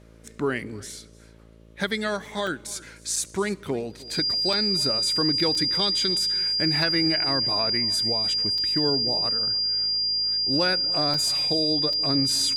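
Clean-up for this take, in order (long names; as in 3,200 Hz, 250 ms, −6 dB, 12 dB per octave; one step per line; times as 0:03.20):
hum removal 55.7 Hz, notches 11
notch filter 4,800 Hz, Q 30
repair the gap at 0:02.47/0:03.16/0:04.53/0:05.55/0:08.58/0:11.14/0:11.93, 3.3 ms
echo removal 303 ms −21.5 dB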